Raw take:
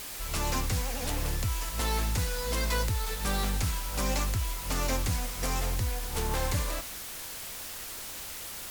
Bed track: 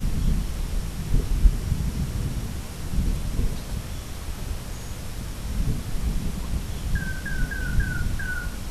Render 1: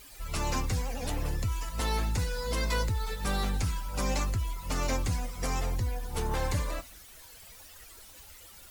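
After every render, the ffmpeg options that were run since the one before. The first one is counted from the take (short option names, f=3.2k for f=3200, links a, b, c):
-af "afftdn=nr=14:nf=-40"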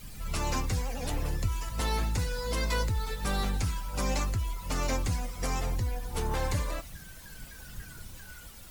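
-filter_complex "[1:a]volume=-20.5dB[a];[0:a][a]amix=inputs=2:normalize=0"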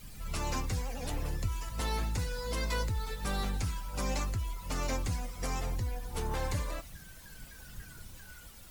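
-af "volume=-3.5dB"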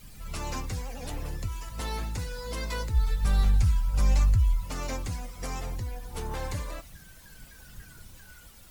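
-filter_complex "[0:a]asplit=3[a][b][c];[a]afade=t=out:st=2.93:d=0.02[d];[b]asubboost=boost=6:cutoff=130,afade=t=in:st=2.93:d=0.02,afade=t=out:st=4.64:d=0.02[e];[c]afade=t=in:st=4.64:d=0.02[f];[d][e][f]amix=inputs=3:normalize=0"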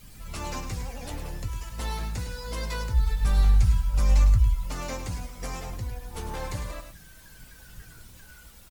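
-filter_complex "[0:a]asplit=2[a][b];[b]adelay=17,volume=-11.5dB[c];[a][c]amix=inputs=2:normalize=0,asplit=2[d][e];[e]aecho=0:1:104:0.355[f];[d][f]amix=inputs=2:normalize=0"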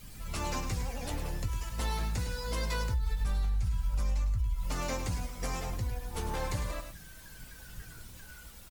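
-af "alimiter=limit=-19.5dB:level=0:latency=1:release=154,acompressor=threshold=-27dB:ratio=4"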